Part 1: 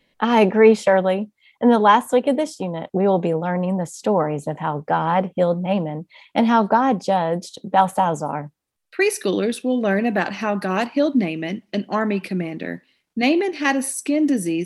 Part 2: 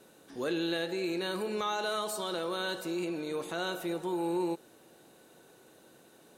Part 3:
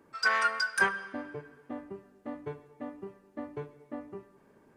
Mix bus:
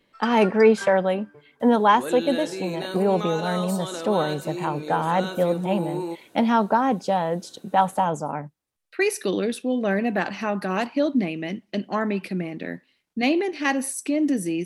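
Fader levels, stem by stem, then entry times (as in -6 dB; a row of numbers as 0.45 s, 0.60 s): -3.5 dB, +1.5 dB, -9.5 dB; 0.00 s, 1.60 s, 0.00 s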